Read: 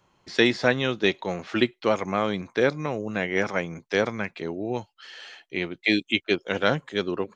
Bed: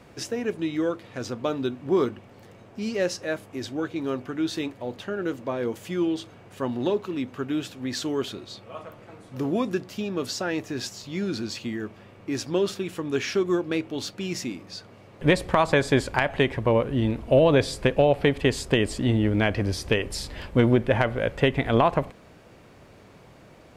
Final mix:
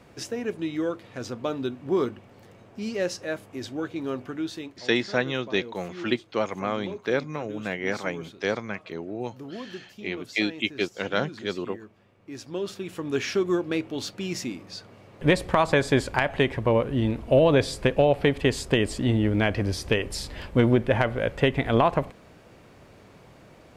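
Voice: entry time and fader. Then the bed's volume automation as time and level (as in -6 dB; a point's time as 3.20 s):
4.50 s, -3.5 dB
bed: 4.32 s -2 dB
4.89 s -12.5 dB
12.17 s -12.5 dB
13.11 s -0.5 dB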